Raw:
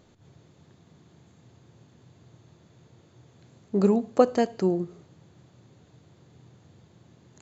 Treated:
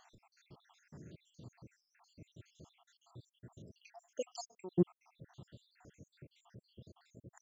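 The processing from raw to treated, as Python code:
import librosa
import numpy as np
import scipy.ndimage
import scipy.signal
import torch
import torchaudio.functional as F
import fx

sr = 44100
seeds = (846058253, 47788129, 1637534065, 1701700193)

y = fx.spec_dropout(x, sr, seeds[0], share_pct=80)
y = fx.differentiator(y, sr, at=(3.78, 4.72))
y = y * librosa.db_to_amplitude(3.5)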